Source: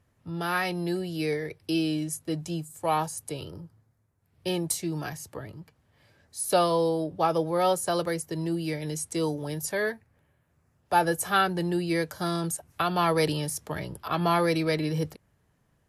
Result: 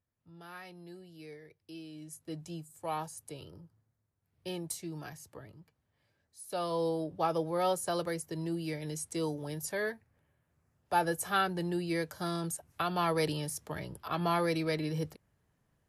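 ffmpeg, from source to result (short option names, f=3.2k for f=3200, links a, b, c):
-af "volume=1.5dB,afade=t=in:st=1.92:d=0.44:silence=0.316228,afade=t=out:st=5.35:d=1.13:silence=0.421697,afade=t=in:st=6.48:d=0.39:silence=0.266073"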